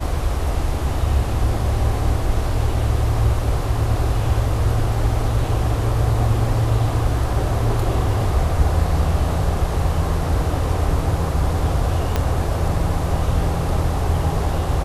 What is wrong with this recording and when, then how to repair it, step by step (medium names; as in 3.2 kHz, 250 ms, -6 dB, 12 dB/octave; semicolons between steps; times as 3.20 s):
12.16 s: pop -6 dBFS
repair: de-click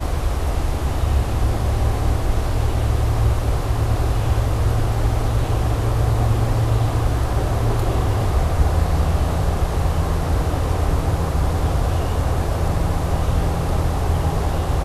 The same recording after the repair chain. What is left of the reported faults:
12.16 s: pop